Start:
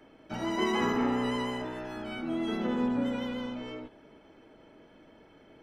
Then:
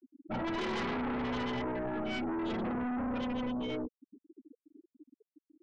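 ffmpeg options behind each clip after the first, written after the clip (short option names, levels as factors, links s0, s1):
-af "aeval=exprs='(tanh(79.4*val(0)+0.4)-tanh(0.4))/79.4':c=same,afftfilt=real='re*gte(hypot(re,im),0.0126)':imag='im*gte(hypot(re,im),0.0126)':win_size=1024:overlap=0.75,aeval=exprs='0.0266*sin(PI/2*2.24*val(0)/0.0266)':c=same"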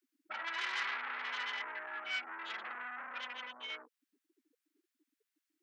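-af "acompressor=threshold=0.0112:ratio=6,highpass=f=1600:t=q:w=1.6,volume=2"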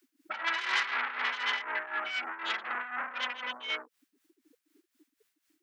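-filter_complex "[0:a]asplit=2[s0][s1];[s1]acompressor=threshold=0.00447:ratio=6,volume=0.841[s2];[s0][s2]amix=inputs=2:normalize=0,tremolo=f=4:d=0.7,volume=2.66"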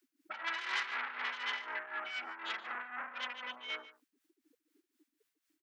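-af "aecho=1:1:146:0.141,volume=0.473"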